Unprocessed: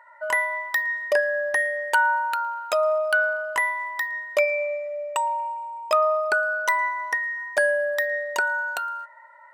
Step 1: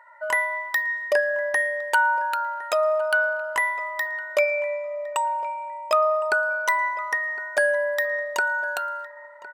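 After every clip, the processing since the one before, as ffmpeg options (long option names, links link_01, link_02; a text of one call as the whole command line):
ffmpeg -i in.wav -filter_complex "[0:a]asplit=2[link_01][link_02];[link_02]adelay=1060,lowpass=frequency=1500:poles=1,volume=-16dB,asplit=2[link_03][link_04];[link_04]adelay=1060,lowpass=frequency=1500:poles=1,volume=0.31,asplit=2[link_05][link_06];[link_06]adelay=1060,lowpass=frequency=1500:poles=1,volume=0.31[link_07];[link_01][link_03][link_05][link_07]amix=inputs=4:normalize=0" out.wav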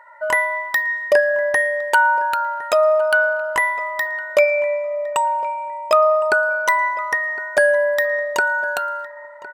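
ffmpeg -i in.wav -af "lowshelf=frequency=330:gain=12,volume=4dB" out.wav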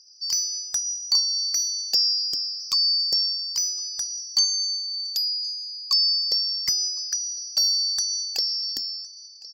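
ffmpeg -i in.wav -af "afftfilt=real='real(if(lt(b,736),b+184*(1-2*mod(floor(b/184),2)),b),0)':imag='imag(if(lt(b,736),b+184*(1-2*mod(floor(b/184),2)),b),0)':win_size=2048:overlap=0.75,volume=-6.5dB" out.wav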